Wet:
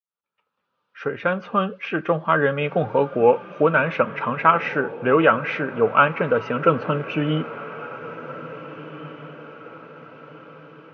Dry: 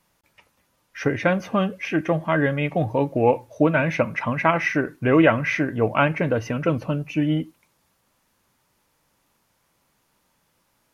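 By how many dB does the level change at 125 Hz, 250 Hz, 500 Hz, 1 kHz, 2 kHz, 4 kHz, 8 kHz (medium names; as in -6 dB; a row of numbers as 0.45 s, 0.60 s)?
-3.5 dB, -3.5 dB, +2.5 dB, +5.0 dB, +1.5 dB, +1.0 dB, no reading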